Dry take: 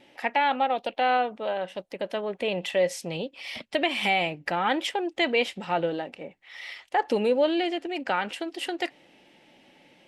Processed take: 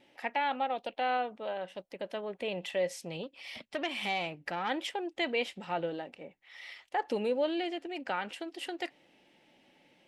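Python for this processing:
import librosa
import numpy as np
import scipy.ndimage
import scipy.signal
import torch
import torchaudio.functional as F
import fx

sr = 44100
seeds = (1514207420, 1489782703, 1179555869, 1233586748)

y = fx.transformer_sat(x, sr, knee_hz=1300.0, at=(3.23, 4.7))
y = F.gain(torch.from_numpy(y), -7.5).numpy()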